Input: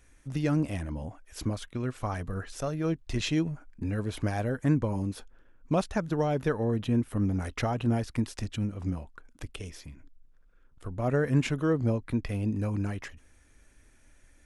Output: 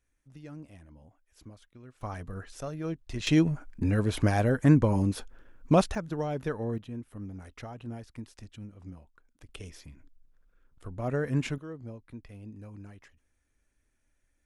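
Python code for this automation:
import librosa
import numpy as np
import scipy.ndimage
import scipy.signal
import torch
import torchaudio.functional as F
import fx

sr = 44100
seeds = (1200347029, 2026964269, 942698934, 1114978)

y = fx.gain(x, sr, db=fx.steps((0.0, -18.0), (2.01, -5.0), (3.27, 5.0), (5.95, -4.5), (6.78, -13.0), (9.49, -3.5), (11.58, -15.5)))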